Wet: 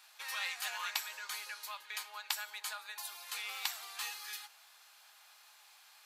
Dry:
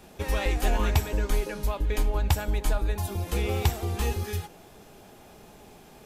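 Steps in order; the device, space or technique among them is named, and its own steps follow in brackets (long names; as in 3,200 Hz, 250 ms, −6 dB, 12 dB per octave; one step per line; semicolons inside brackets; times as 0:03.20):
headphones lying on a table (high-pass filter 1,100 Hz 24 dB per octave; parametric band 4,300 Hz +7 dB 0.33 octaves)
level −4 dB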